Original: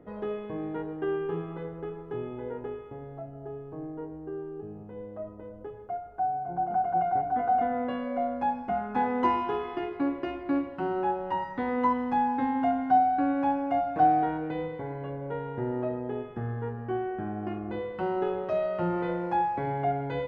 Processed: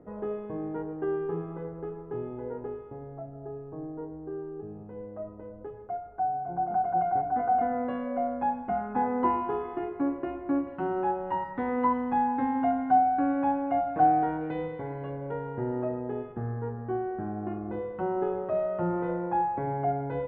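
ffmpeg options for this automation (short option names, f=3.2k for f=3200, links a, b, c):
-af "asetnsamples=n=441:p=0,asendcmd='4.31 lowpass f 1900;8.93 lowpass f 1400;10.67 lowpass f 2100;14.41 lowpass f 3200;15.31 lowpass f 1900;16.32 lowpass f 1400',lowpass=1.4k"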